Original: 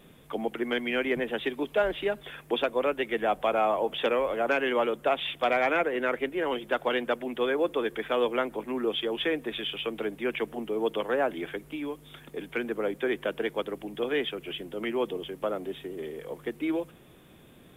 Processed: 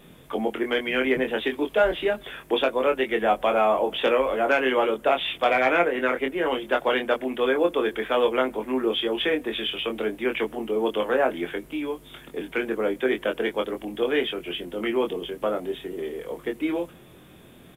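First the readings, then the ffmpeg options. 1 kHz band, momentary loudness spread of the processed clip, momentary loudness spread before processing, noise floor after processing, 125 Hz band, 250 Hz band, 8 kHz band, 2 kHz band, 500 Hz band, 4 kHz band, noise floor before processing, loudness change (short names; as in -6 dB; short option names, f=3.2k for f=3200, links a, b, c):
+4.5 dB, 10 LU, 10 LU, -49 dBFS, +2.0 dB, +4.5 dB, n/a, +4.5 dB, +4.5 dB, +4.5 dB, -54 dBFS, +4.5 dB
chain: -filter_complex "[0:a]asplit=2[a][b];[b]adelay=23,volume=-5dB[c];[a][c]amix=inputs=2:normalize=0,volume=3.5dB"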